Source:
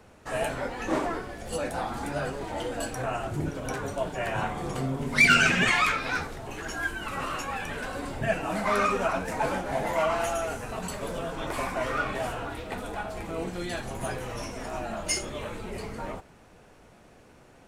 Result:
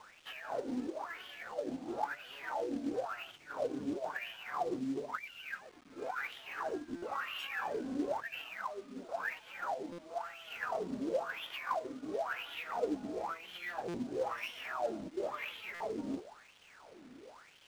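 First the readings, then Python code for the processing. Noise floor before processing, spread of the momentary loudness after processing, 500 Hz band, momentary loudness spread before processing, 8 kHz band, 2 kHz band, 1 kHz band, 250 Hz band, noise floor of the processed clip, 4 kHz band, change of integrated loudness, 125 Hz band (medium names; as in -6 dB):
-54 dBFS, 9 LU, -8.0 dB, 12 LU, -21.5 dB, -14.0 dB, -9.5 dB, -6.5 dB, -59 dBFS, -12.0 dB, -11.0 dB, -21.5 dB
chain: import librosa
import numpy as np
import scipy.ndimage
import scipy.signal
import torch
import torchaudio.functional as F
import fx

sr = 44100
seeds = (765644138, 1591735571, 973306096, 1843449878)

y = fx.over_compress(x, sr, threshold_db=-35.0, ratio=-1.0)
y = fx.wah_lfo(y, sr, hz=0.98, low_hz=250.0, high_hz=3200.0, q=9.4)
y = fx.quant_companded(y, sr, bits=6)
y = fx.buffer_glitch(y, sr, at_s=(6.96, 9.92, 13.88, 15.74), block=256, repeats=10)
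y = np.interp(np.arange(len(y)), np.arange(len(y))[::3], y[::3])
y = y * librosa.db_to_amplitude(8.5)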